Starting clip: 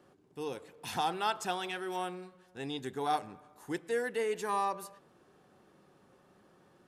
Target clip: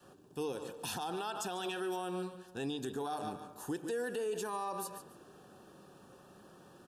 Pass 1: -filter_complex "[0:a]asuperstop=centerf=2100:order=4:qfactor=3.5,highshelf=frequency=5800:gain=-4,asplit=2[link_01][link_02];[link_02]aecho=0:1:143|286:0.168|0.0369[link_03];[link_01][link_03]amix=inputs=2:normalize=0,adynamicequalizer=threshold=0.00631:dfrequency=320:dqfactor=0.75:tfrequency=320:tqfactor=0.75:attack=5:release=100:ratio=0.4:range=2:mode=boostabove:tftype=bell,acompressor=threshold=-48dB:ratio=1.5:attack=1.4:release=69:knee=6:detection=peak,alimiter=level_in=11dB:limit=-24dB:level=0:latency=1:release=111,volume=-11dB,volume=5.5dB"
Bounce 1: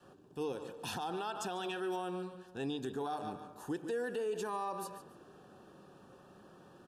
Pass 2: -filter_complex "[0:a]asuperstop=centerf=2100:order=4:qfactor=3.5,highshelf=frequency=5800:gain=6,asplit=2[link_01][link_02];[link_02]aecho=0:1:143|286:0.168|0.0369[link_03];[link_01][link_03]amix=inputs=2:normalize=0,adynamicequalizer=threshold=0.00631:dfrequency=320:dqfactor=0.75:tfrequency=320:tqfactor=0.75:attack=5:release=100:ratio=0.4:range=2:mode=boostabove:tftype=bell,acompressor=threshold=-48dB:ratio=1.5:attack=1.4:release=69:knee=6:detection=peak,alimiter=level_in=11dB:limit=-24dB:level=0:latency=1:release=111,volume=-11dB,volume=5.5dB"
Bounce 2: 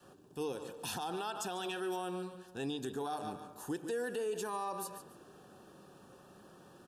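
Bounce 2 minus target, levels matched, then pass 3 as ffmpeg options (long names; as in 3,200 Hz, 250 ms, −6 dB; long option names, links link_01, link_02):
downward compressor: peak gain reduction +2.5 dB
-filter_complex "[0:a]asuperstop=centerf=2100:order=4:qfactor=3.5,highshelf=frequency=5800:gain=6,asplit=2[link_01][link_02];[link_02]aecho=0:1:143|286:0.168|0.0369[link_03];[link_01][link_03]amix=inputs=2:normalize=0,adynamicequalizer=threshold=0.00631:dfrequency=320:dqfactor=0.75:tfrequency=320:tqfactor=0.75:attack=5:release=100:ratio=0.4:range=2:mode=boostabove:tftype=bell,acompressor=threshold=-40.5dB:ratio=1.5:attack=1.4:release=69:knee=6:detection=peak,alimiter=level_in=11dB:limit=-24dB:level=0:latency=1:release=111,volume=-11dB,volume=5.5dB"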